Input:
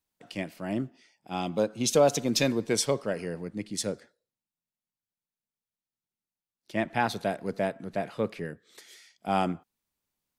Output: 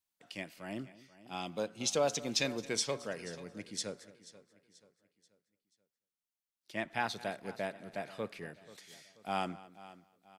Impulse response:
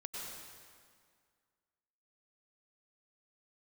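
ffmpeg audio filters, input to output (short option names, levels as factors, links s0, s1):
-filter_complex "[0:a]tiltshelf=f=920:g=-4.5,asplit=2[s0][s1];[s1]adelay=221.6,volume=0.112,highshelf=f=4000:g=-4.99[s2];[s0][s2]amix=inputs=2:normalize=0,acrossover=split=8400[s3][s4];[s4]acompressor=threshold=0.00251:ratio=4:attack=1:release=60[s5];[s3][s5]amix=inputs=2:normalize=0,asplit=2[s6][s7];[s7]aecho=0:1:484|968|1452|1936:0.126|0.0541|0.0233|0.01[s8];[s6][s8]amix=inputs=2:normalize=0,volume=0.422"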